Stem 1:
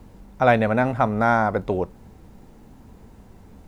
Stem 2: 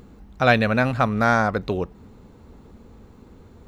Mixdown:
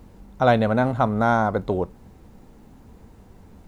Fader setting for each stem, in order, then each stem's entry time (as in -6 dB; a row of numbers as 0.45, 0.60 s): -1.5, -11.5 dB; 0.00, 0.00 s